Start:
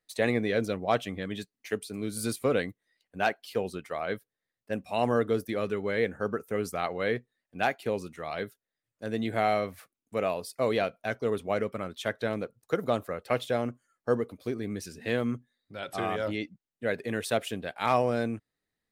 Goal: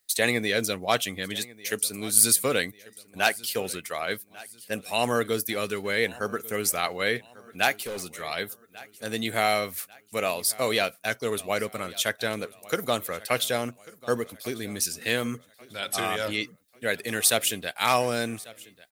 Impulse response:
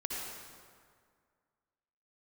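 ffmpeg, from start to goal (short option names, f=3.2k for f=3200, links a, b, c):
-filter_complex "[0:a]aecho=1:1:1143|2286|3429:0.0891|0.0365|0.015,crystalizer=i=8.5:c=0,asettb=1/sr,asplit=3[a][b][c];[a]atrim=end=7.804[d];[b]atrim=start=7.8:end=8.21,asetpts=PTS-STARTPTS,afade=t=in:d=0.004:c=qsin,afade=t=out:st=0.406:d=0.004:c=qsin,asoftclip=type=hard:threshold=-28.5dB[e];[c]atrim=start=8.206[f];[d][e]acrossfade=d=0.004:c1=hsin:c2=qsin[g];[g][f]acrossfade=d=0.004:c1=qsin:c2=hsin,volume=-1.5dB"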